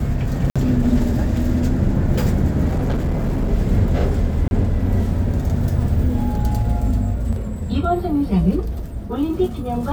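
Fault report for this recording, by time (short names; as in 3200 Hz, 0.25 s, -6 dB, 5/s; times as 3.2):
0.5–0.56 gap 56 ms
2.68–3.5 clipped -16 dBFS
4.48–4.51 gap 31 ms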